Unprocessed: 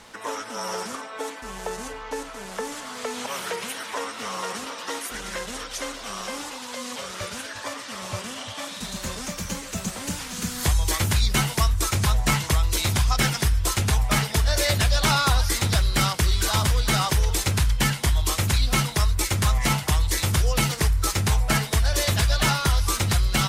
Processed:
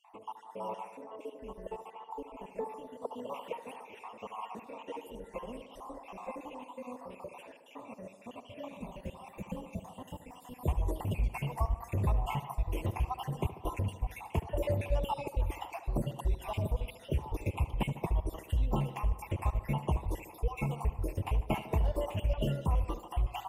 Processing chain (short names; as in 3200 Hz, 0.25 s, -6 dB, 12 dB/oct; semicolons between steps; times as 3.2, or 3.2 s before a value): random spectral dropouts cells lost 58%; EQ curve 120 Hz 0 dB, 670 Hz +4 dB, 1000 Hz +3 dB, 1500 Hz -22 dB, 2700 Hz -1 dB, 4100 Hz -29 dB, 12000 Hz -12 dB; tape echo 73 ms, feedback 82%, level -11.5 dB, low-pass 2500 Hz; gain -7.5 dB